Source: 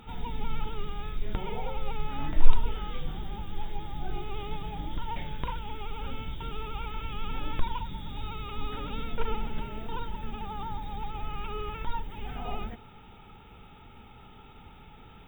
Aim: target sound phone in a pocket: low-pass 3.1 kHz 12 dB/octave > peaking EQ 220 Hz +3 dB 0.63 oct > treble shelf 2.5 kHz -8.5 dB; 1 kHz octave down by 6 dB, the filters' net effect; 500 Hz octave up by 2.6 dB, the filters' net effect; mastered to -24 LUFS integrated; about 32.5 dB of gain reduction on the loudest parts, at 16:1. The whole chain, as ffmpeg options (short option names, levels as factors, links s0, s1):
-af "equalizer=f=500:t=o:g=4.5,equalizer=f=1000:t=o:g=-7.5,acompressor=threshold=0.0112:ratio=16,lowpass=3100,equalizer=f=220:t=o:w=0.63:g=3,highshelf=f=2500:g=-8.5,volume=20"